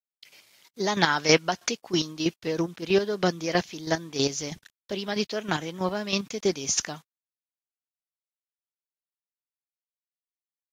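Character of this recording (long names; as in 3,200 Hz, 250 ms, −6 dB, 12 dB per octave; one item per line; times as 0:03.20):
chopped level 3.1 Hz, depth 65%, duty 25%
a quantiser's noise floor 10 bits, dither none
Ogg Vorbis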